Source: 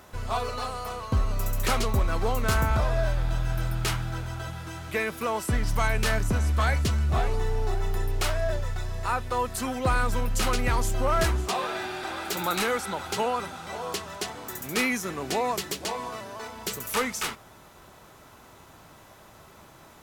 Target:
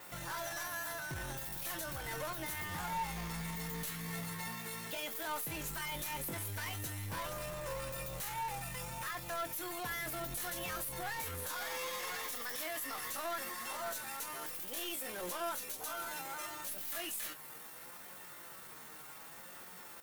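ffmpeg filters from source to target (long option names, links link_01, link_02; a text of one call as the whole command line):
ffmpeg -i in.wav -filter_complex "[0:a]highpass=frequency=210:poles=1,aemphasis=mode=production:type=50fm,bandreject=frequency=3600:width=13,adynamicequalizer=threshold=0.00708:dfrequency=8600:dqfactor=2:tfrequency=8600:tqfactor=2:attack=5:release=100:ratio=0.375:range=3.5:mode=boostabove:tftype=bell,acompressor=threshold=-27dB:ratio=3,aeval=exprs='(tanh(63.1*val(0)+0.05)-tanh(0.05))/63.1':channel_layout=same,flanger=delay=7.6:depth=1.4:regen=64:speed=0.66:shape=sinusoidal,asetrate=60591,aresample=44100,atempo=0.727827,asplit=2[link_01][link_02];[link_02]adelay=22,volume=-11dB[link_03];[link_01][link_03]amix=inputs=2:normalize=0,volume=2.5dB" out.wav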